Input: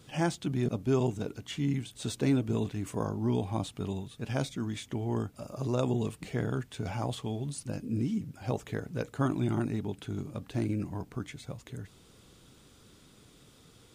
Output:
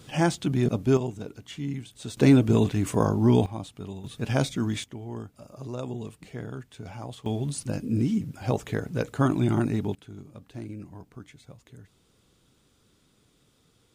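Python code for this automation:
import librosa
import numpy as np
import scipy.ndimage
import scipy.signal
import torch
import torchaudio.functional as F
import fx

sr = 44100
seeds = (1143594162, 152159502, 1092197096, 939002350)

y = fx.gain(x, sr, db=fx.steps((0.0, 6.0), (0.97, -2.0), (2.17, 9.5), (3.46, -3.0), (4.04, 7.0), (4.84, -5.0), (7.26, 6.0), (9.95, -7.0)))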